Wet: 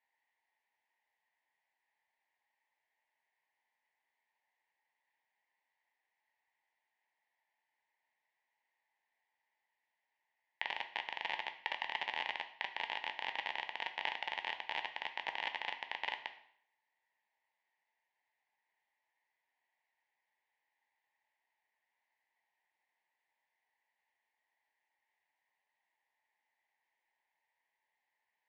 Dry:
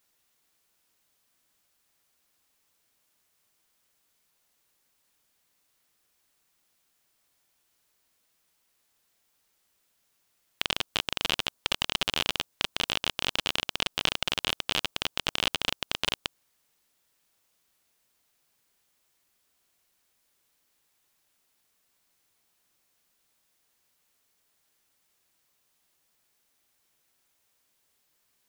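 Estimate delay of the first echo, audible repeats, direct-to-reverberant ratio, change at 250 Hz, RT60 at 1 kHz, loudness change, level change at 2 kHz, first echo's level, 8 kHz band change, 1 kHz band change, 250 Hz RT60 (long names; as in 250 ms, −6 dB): no echo audible, no echo audible, 7.0 dB, −21.5 dB, 0.65 s, −10.5 dB, −6.0 dB, no echo audible, below −25 dB, −3.5 dB, 0.65 s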